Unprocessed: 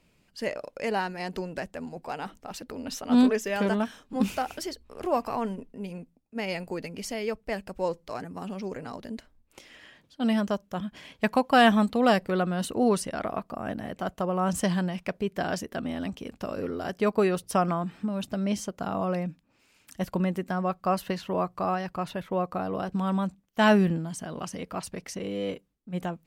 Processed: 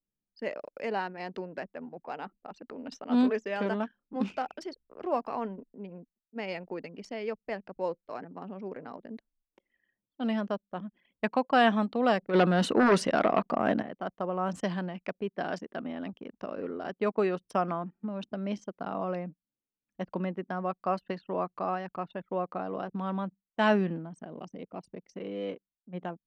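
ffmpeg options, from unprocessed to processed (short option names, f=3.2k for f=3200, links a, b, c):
-filter_complex "[0:a]asplit=3[a][b][c];[a]afade=t=out:st=12.33:d=0.02[d];[b]aeval=exprs='0.224*sin(PI/2*2.51*val(0)/0.224)':c=same,afade=t=in:st=12.33:d=0.02,afade=t=out:st=13.81:d=0.02[e];[c]afade=t=in:st=13.81:d=0.02[f];[d][e][f]amix=inputs=3:normalize=0,asettb=1/sr,asplit=3[g][h][i];[g]atrim=end=24.254[j];[h]atrim=start=24.25:end=25.13,asetpts=PTS-STARTPTS,afade=t=in:d=0.004:c=qsin,afade=t=out:st=0.876:d=0.004:c=qsin,equalizer=f=1.4k:w=1.1:g=-10[k];[i]atrim=start=25.126[l];[j][k]acrossfade=d=0.004:c1=hsin:c2=qsin[m];[m][l]acrossfade=d=0.004:c1=qsin:c2=hsin,aemphasis=mode=reproduction:type=cd,anlmdn=0.398,acrossover=split=170 7400:gain=0.126 1 0.178[n][o][p];[n][o][p]amix=inputs=3:normalize=0,volume=-3.5dB"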